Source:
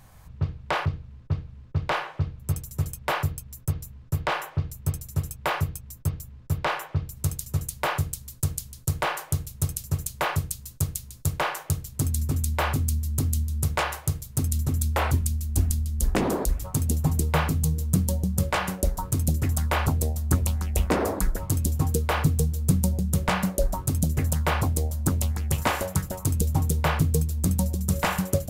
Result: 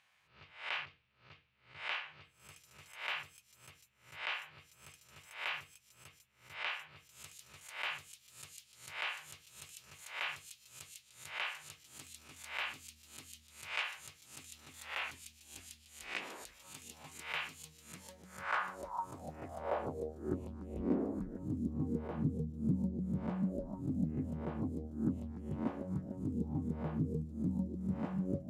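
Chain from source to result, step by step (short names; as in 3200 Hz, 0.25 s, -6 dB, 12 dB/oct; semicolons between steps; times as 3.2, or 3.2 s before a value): spectral swells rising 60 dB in 0.45 s; band-pass sweep 2600 Hz -> 250 Hz, 17.74–20.8; gain -5 dB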